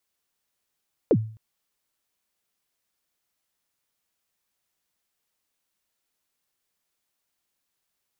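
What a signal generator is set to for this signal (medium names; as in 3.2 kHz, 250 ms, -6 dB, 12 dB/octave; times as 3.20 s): kick drum length 0.26 s, from 550 Hz, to 110 Hz, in 58 ms, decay 0.45 s, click off, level -12 dB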